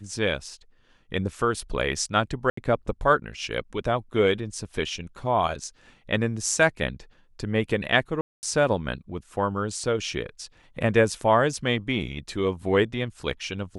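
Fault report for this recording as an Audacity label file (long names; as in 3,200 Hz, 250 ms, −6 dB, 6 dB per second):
2.500000	2.570000	drop-out 74 ms
8.210000	8.430000	drop-out 219 ms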